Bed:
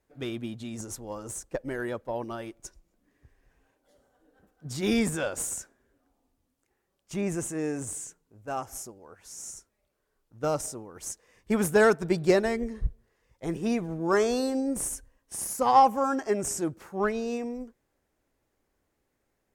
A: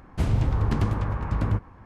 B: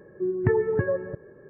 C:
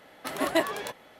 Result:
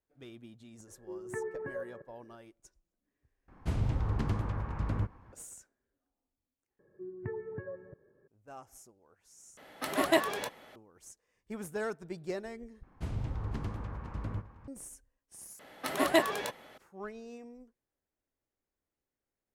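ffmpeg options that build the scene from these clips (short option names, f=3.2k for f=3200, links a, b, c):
-filter_complex "[2:a]asplit=2[a][b];[1:a]asplit=2[c][d];[3:a]asplit=2[e][f];[0:a]volume=-15.5dB[g];[a]highpass=f=730:p=1[h];[d]aecho=1:1:504:0.224[i];[g]asplit=6[j][k][l][m][n][o];[j]atrim=end=3.484[p];[c]atrim=end=1.85,asetpts=PTS-STARTPTS,volume=-8dB[q];[k]atrim=start=5.326:end=6.794[r];[b]atrim=end=1.49,asetpts=PTS-STARTPTS,volume=-17dB[s];[l]atrim=start=8.276:end=9.574[t];[e]atrim=end=1.19,asetpts=PTS-STARTPTS,volume=-1dB[u];[m]atrim=start=10.756:end=12.834[v];[i]atrim=end=1.85,asetpts=PTS-STARTPTS,volume=-13dB[w];[n]atrim=start=14.676:end=15.594[x];[f]atrim=end=1.19,asetpts=PTS-STARTPTS,volume=-0.5dB[y];[o]atrim=start=16.776[z];[h]atrim=end=1.49,asetpts=PTS-STARTPTS,volume=-9dB,afade=t=in:d=0.004:c=hsin,afade=t=out:st=1.486:d=0.004:c=hsin,adelay=870[aa];[p][q]acrossfade=d=0.004:c1=hsin:c2=hsin[ab];[ab][r]acrossfade=d=0.004:c1=hsin:c2=hsin[ac];[ac][s]acrossfade=d=0.004:c1=hsin:c2=hsin[ad];[ad][t]acrossfade=d=0.004:c1=hsin:c2=hsin[ae];[ae][u]acrossfade=d=0.004:c1=hsin:c2=hsin[af];[af][v]acrossfade=d=0.004:c1=hsin:c2=hsin[ag];[ag][w]acrossfade=d=0.004:c1=hsin:c2=hsin[ah];[ah][x]acrossfade=d=0.004:c1=hsin:c2=hsin[ai];[ai][y]acrossfade=d=0.004:c1=hsin:c2=hsin[aj];[aj][z]acrossfade=d=0.004:c1=hsin:c2=hsin[ak];[ak][aa]amix=inputs=2:normalize=0"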